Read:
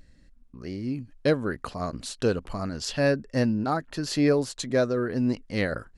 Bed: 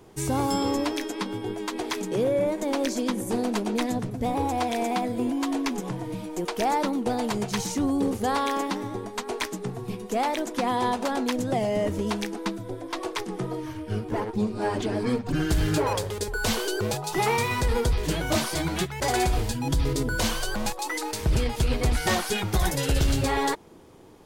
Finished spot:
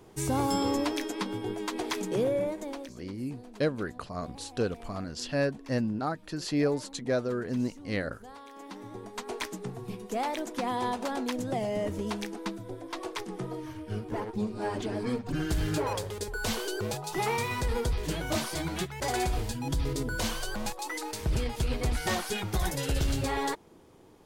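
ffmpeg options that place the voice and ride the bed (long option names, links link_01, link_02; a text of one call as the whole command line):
ffmpeg -i stem1.wav -i stem2.wav -filter_complex "[0:a]adelay=2350,volume=-5dB[link_01];[1:a]volume=14.5dB,afade=type=out:start_time=2.18:duration=0.75:silence=0.1,afade=type=in:start_time=8.54:duration=0.73:silence=0.141254[link_02];[link_01][link_02]amix=inputs=2:normalize=0" out.wav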